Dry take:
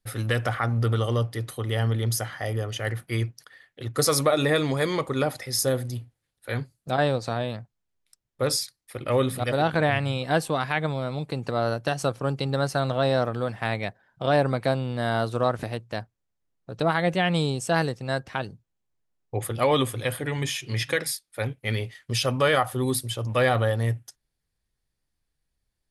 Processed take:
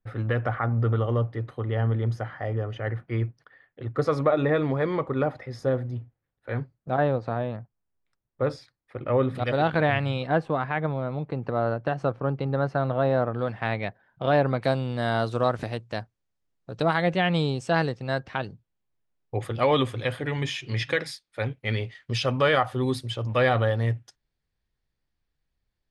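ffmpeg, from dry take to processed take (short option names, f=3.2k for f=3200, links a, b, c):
-af "asetnsamples=n=441:p=0,asendcmd='9.35 lowpass f 3600;10.27 lowpass f 1700;13.39 lowpass f 3200;14.62 lowpass f 7100;17.04 lowpass f 4300',lowpass=1.6k"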